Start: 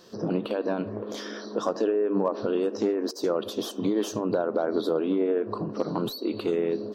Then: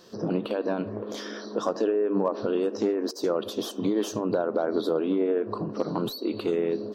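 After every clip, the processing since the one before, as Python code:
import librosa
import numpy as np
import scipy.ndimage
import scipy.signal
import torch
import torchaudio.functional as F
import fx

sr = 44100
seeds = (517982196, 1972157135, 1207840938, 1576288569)

y = x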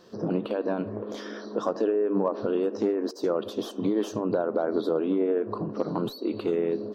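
y = fx.high_shelf(x, sr, hz=3300.0, db=-8.5)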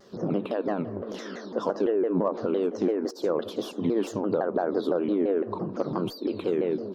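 y = fx.vibrato_shape(x, sr, shape='saw_down', rate_hz=5.9, depth_cents=250.0)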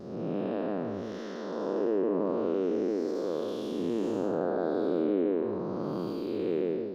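y = fx.spec_blur(x, sr, span_ms=355.0)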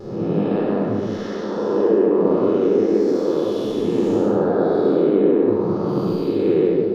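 y = fx.room_shoebox(x, sr, seeds[0], volume_m3=1900.0, walls='furnished', distance_m=4.1)
y = F.gain(torch.from_numpy(y), 6.0).numpy()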